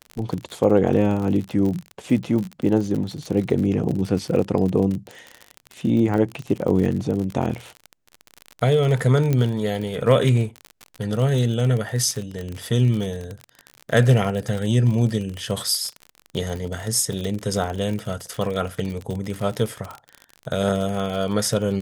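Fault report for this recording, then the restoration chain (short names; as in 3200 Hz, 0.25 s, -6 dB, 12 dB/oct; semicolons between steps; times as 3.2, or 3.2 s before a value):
crackle 45/s -26 dBFS
9.33 pop -10 dBFS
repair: de-click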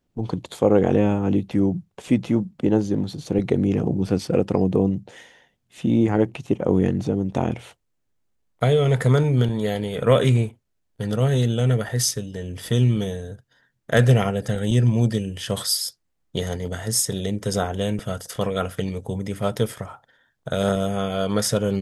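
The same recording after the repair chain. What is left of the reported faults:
none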